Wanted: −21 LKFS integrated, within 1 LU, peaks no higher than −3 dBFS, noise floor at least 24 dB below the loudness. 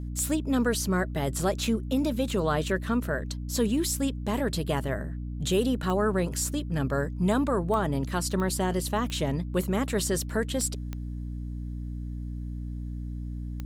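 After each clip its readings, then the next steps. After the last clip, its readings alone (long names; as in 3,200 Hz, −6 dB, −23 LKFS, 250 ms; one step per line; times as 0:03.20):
number of clicks 8; mains hum 60 Hz; hum harmonics up to 300 Hz; level of the hum −32 dBFS; integrated loudness −28.5 LKFS; sample peak −13.0 dBFS; target loudness −21.0 LKFS
→ click removal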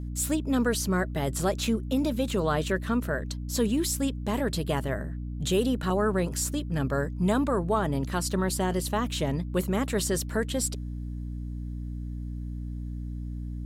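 number of clicks 0; mains hum 60 Hz; hum harmonics up to 300 Hz; level of the hum −32 dBFS
→ mains-hum notches 60/120/180/240/300 Hz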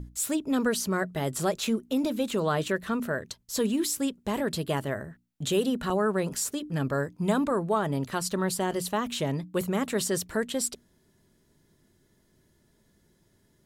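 mains hum none found; integrated loudness −29.0 LKFS; sample peak −13.5 dBFS; target loudness −21.0 LKFS
→ level +8 dB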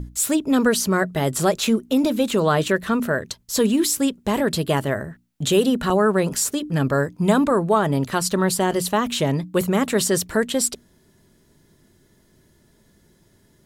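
integrated loudness −21.0 LKFS; sample peak −5.5 dBFS; background noise floor −59 dBFS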